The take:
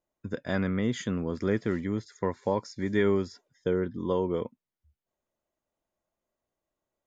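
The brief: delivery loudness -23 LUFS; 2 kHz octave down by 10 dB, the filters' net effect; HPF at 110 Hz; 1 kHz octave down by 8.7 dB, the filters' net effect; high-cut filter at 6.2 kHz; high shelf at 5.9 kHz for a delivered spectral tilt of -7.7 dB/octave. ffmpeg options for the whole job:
-af "highpass=110,lowpass=6200,equalizer=f=1000:t=o:g=-8,equalizer=f=2000:t=o:g=-9,highshelf=f=5900:g=-4.5,volume=2.66"

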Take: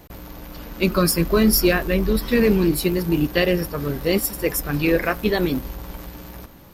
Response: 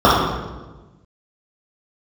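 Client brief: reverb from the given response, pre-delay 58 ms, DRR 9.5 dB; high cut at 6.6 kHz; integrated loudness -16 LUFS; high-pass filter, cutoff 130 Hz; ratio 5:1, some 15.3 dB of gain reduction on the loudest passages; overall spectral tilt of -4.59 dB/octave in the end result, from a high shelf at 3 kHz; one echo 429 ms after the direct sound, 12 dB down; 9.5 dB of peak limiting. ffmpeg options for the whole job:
-filter_complex "[0:a]highpass=130,lowpass=6600,highshelf=f=3000:g=7,acompressor=threshold=0.0282:ratio=5,alimiter=level_in=1.26:limit=0.0631:level=0:latency=1,volume=0.794,aecho=1:1:429:0.251,asplit=2[s0][s1];[1:a]atrim=start_sample=2205,adelay=58[s2];[s1][s2]afir=irnorm=-1:irlink=0,volume=0.00944[s3];[s0][s3]amix=inputs=2:normalize=0,volume=9.44"

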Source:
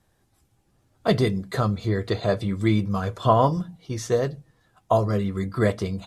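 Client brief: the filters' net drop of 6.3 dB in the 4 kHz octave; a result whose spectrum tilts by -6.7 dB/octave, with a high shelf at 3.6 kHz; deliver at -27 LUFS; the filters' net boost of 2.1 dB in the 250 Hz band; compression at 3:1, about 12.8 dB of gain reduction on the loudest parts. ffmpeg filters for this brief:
-af "equalizer=f=250:t=o:g=3,highshelf=f=3600:g=-6.5,equalizer=f=4000:t=o:g=-3.5,acompressor=threshold=0.0251:ratio=3,volume=2.24"

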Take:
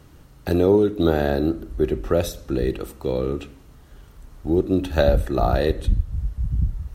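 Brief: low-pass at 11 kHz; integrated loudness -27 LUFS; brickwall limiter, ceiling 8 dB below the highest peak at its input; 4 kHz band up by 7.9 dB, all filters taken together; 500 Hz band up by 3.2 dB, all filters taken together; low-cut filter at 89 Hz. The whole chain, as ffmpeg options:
-af "highpass=89,lowpass=11000,equalizer=f=500:t=o:g=4,equalizer=f=4000:t=o:g=8.5,volume=0.631,alimiter=limit=0.2:level=0:latency=1"

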